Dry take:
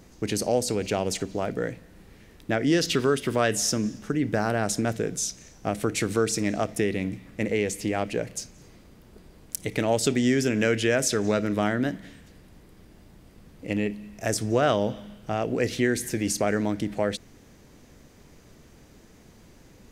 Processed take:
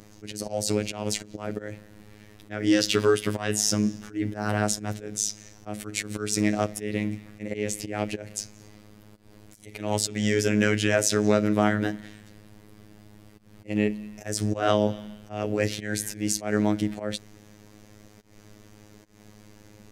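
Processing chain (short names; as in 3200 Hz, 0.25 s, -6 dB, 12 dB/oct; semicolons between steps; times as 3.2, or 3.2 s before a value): auto swell 0.174 s; robotiser 105 Hz; gain +3.5 dB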